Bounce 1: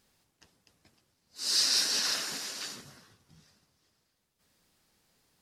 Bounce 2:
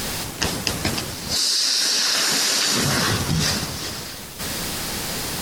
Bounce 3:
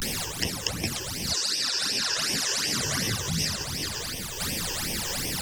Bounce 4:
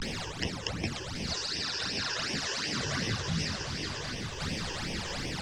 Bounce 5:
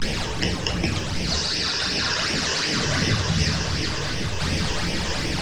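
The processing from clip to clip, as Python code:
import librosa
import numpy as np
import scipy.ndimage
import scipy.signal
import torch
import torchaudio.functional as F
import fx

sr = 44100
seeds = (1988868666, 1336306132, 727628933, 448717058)

y1 = fx.env_flatten(x, sr, amount_pct=100)
y1 = y1 * librosa.db_to_amplitude(4.0)
y2 = fx.vibrato(y1, sr, rate_hz=0.42, depth_cents=83.0)
y2 = fx.phaser_stages(y2, sr, stages=12, low_hz=210.0, high_hz=1400.0, hz=2.7, feedback_pct=20)
y2 = fx.band_squash(y2, sr, depth_pct=70)
y2 = y2 * librosa.db_to_amplitude(-4.5)
y3 = fx.air_absorb(y2, sr, metres=130.0)
y3 = y3 + 10.0 ** (-9.0 / 20.0) * np.pad(y3, (int(1135 * sr / 1000.0), 0))[:len(y3)]
y3 = y3 * librosa.db_to_amplitude(-2.0)
y4 = fx.dmg_crackle(y3, sr, seeds[0], per_s=130.0, level_db=-47.0)
y4 = fx.room_shoebox(y4, sr, seeds[1], volume_m3=89.0, walls='mixed', distance_m=0.53)
y4 = y4 * librosa.db_to_amplitude(8.0)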